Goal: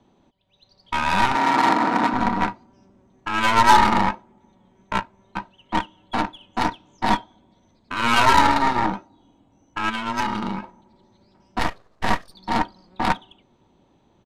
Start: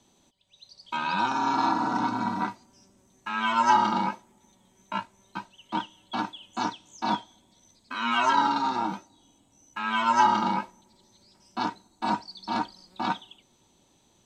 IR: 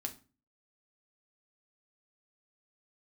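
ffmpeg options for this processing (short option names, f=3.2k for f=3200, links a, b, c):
-filter_complex "[0:a]asplit=3[a][b][c];[a]afade=t=out:st=9.89:d=0.02[d];[b]equalizer=f=800:w=0.54:g=-13,afade=t=in:st=9.89:d=0.02,afade=t=out:st=10.62:d=0.02[e];[c]afade=t=in:st=10.62:d=0.02[f];[d][e][f]amix=inputs=3:normalize=0,aeval=exprs='0.398*(cos(1*acos(clip(val(0)/0.398,-1,1)))-cos(1*PI/2))+0.0501*(cos(8*acos(clip(val(0)/0.398,-1,1)))-cos(8*PI/2))':c=same,adynamicsmooth=sensitivity=3:basefreq=2.1k,asettb=1/sr,asplit=3[g][h][i];[g]atrim=end=1.354[j];[h]atrim=start=1.35:end=2.14,asetpts=PTS-STARTPTS,afade=t=in:d=0.004:c=qsin,afade=t=out:st=0.786:d=0.004:c=qsin,highpass=f=160:w=0.5412,highpass=f=160:w=1.3066[k];[i]atrim=start=2.136[l];[j][k]acrossfade=d=0.004:c1=hsin:c2=qsin[m];[m][l]acrossfade=d=0.004:c1=qsin:c2=hsin,asettb=1/sr,asplit=3[n][o][p];[n]atrim=end=11.594[q];[o]atrim=start=11.59:end=12.34,asetpts=PTS-STARTPTS,afade=t=in:d=0.004:c=qsin,afade=t=out:st=0.746:d=0.004:c=qsin,aeval=exprs='abs(val(0))':c=same[r];[p]atrim=start=12.336[s];[q][r]acrossfade=d=0.004:c1=hsin:c2=qsin[t];[t][s]acrossfade=d=0.004:c1=qsin:c2=hsin,aresample=32000,aresample=44100,volume=6.5dB"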